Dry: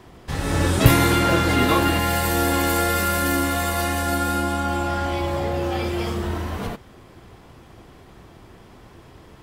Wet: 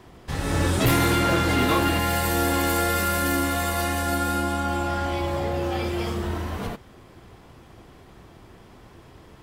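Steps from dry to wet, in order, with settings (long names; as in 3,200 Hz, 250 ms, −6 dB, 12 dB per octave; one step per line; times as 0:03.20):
gain into a clipping stage and back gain 13 dB
level −2 dB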